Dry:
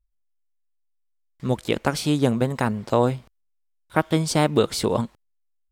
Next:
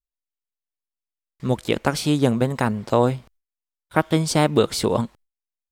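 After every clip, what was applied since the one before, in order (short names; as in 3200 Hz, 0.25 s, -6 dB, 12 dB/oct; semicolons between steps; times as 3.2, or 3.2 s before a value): gate with hold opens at -47 dBFS; gain +1.5 dB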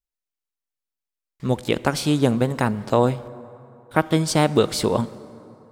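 reverb RT60 3.2 s, pre-delay 33 ms, DRR 17.5 dB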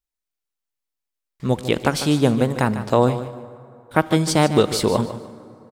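feedback echo 0.149 s, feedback 26%, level -12 dB; gain +1.5 dB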